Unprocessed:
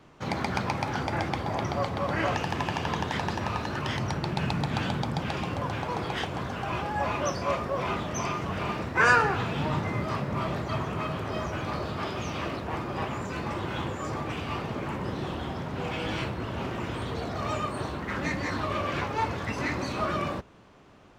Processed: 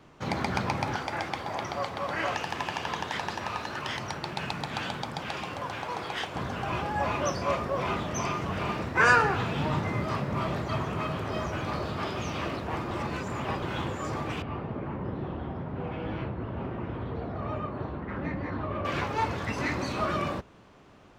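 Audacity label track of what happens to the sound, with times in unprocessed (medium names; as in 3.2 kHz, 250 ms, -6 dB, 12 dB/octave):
0.960000	6.360000	bass shelf 360 Hz -11.5 dB
12.910000	13.620000	reverse
14.420000	18.850000	tape spacing loss at 10 kHz 44 dB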